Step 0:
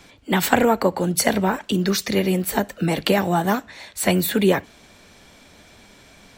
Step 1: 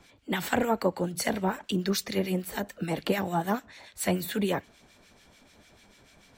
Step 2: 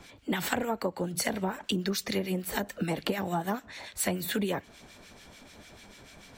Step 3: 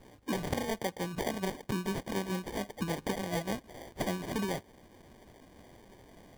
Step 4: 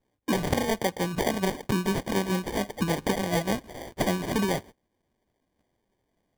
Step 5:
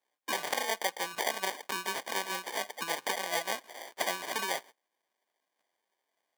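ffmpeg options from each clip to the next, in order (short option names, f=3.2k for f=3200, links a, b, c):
-filter_complex "[0:a]acrossover=split=1400[a][b];[a]aeval=exprs='val(0)*(1-0.7/2+0.7/2*cos(2*PI*6.8*n/s))':c=same[c];[b]aeval=exprs='val(0)*(1-0.7/2-0.7/2*cos(2*PI*6.8*n/s))':c=same[d];[c][d]amix=inputs=2:normalize=0,volume=-5.5dB"
-af "acompressor=threshold=-33dB:ratio=6,volume=6dB"
-af "acrusher=samples=33:mix=1:aa=0.000001,volume=-3.5dB"
-af "agate=range=-28dB:threshold=-49dB:ratio=16:detection=peak,volume=7.5dB"
-af "highpass=830"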